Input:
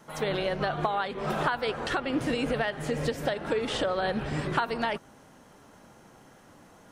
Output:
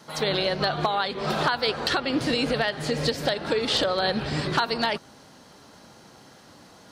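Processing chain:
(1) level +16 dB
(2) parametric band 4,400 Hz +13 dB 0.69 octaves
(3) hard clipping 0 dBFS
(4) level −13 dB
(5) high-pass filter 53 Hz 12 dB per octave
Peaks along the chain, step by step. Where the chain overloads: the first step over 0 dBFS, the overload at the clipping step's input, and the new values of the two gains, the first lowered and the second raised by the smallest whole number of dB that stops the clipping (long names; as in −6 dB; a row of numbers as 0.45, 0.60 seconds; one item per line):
+2.5, +4.5, 0.0, −13.0, −11.5 dBFS
step 1, 4.5 dB
step 1 +11 dB, step 4 −8 dB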